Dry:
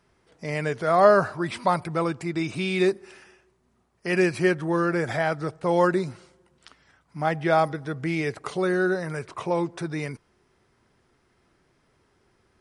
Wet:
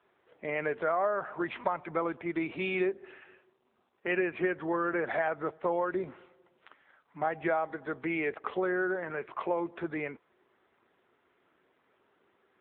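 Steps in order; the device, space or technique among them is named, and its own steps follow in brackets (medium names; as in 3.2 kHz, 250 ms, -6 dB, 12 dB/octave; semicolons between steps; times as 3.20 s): 7.68–9.49 s: high-pass 110 Hz 6 dB/octave; voicemail (band-pass 340–2900 Hz; compression 8:1, threshold -25 dBFS, peak gain reduction 13.5 dB; AMR-NB 7.95 kbps 8 kHz)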